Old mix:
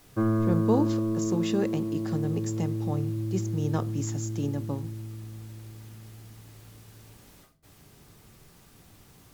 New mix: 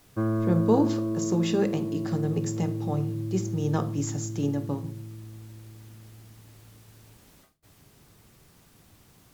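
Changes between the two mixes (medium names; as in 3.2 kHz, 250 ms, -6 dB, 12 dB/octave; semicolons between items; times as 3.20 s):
speech: send +10.5 dB; background: send -11.5 dB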